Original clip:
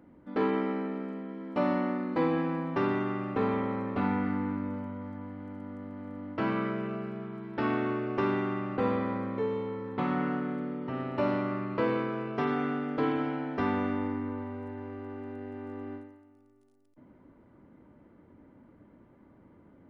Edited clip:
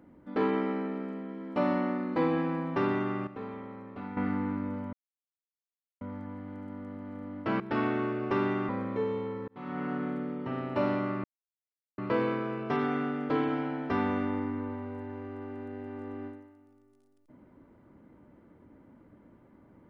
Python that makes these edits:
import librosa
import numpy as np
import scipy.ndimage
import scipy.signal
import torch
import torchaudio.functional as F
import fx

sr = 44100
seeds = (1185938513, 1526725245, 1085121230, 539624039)

y = fx.edit(x, sr, fx.clip_gain(start_s=3.27, length_s=0.9, db=-11.5),
    fx.insert_silence(at_s=4.93, length_s=1.08),
    fx.cut(start_s=6.52, length_s=0.95),
    fx.cut(start_s=8.56, length_s=0.55),
    fx.fade_in_span(start_s=9.9, length_s=0.55),
    fx.insert_silence(at_s=11.66, length_s=0.74), tone=tone)